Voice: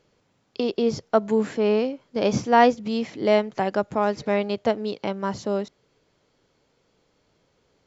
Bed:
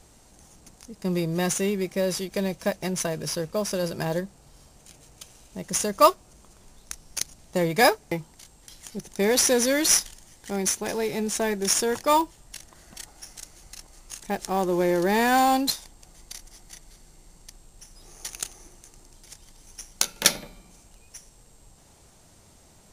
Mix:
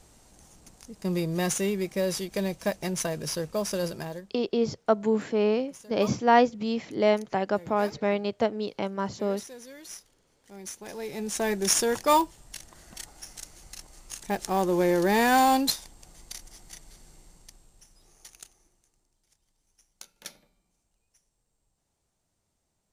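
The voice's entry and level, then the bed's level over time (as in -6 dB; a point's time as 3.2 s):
3.75 s, -3.0 dB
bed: 3.87 s -2 dB
4.53 s -23.5 dB
10.18 s -23.5 dB
11.52 s -0.5 dB
17.14 s -0.5 dB
19.14 s -23 dB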